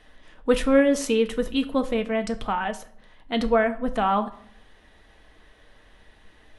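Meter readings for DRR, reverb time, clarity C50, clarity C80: 6.5 dB, 0.55 s, 15.5 dB, 19.0 dB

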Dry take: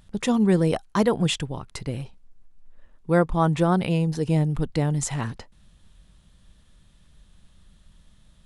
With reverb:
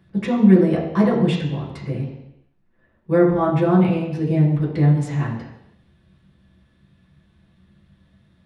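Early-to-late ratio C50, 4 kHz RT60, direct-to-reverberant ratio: 5.0 dB, 0.90 s, −7.0 dB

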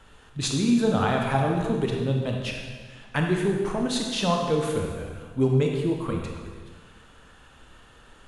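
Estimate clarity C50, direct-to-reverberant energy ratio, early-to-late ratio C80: 2.5 dB, 1.0 dB, 4.5 dB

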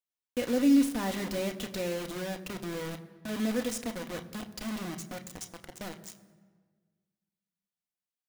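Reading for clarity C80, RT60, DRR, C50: 15.0 dB, 1.5 s, 6.0 dB, 14.0 dB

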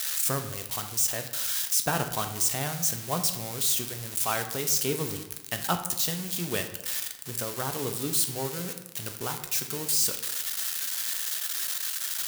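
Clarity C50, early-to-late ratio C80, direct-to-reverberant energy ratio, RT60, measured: 9.5 dB, 12.0 dB, 5.5 dB, 0.95 s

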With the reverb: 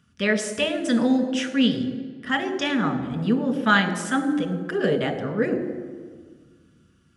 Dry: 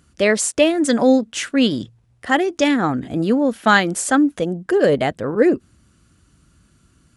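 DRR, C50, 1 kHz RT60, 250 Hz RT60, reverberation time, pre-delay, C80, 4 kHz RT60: 5.0 dB, 9.5 dB, 1.6 s, 2.1 s, 1.7 s, 3 ms, 11.0 dB, 1.2 s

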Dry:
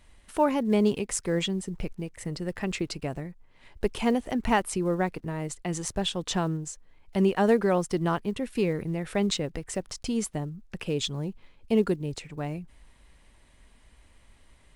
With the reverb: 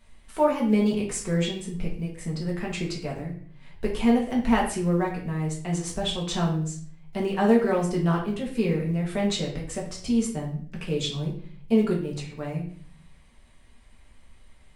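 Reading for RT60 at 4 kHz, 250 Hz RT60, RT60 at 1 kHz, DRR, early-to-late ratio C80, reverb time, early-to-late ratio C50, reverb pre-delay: 0.50 s, 0.80 s, 0.45 s, −3.5 dB, 11.5 dB, 0.50 s, 6.5 dB, 4 ms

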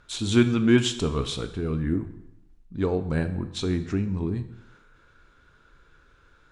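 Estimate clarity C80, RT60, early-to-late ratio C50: 14.5 dB, 0.80 s, 12.5 dB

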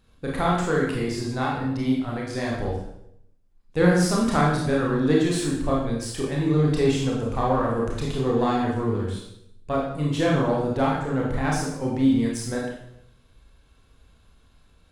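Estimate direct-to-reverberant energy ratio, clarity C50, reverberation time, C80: −3.5 dB, 1.5 dB, 0.75 s, 5.0 dB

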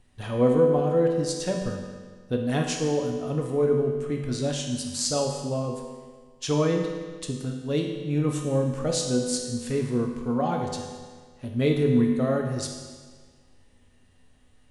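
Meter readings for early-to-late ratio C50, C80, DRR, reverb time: 3.0 dB, 5.0 dB, 0.5 dB, 1.6 s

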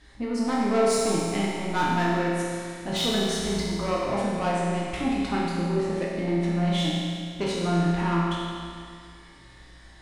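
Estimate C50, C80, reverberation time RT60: −2.0 dB, 0.0 dB, 2.2 s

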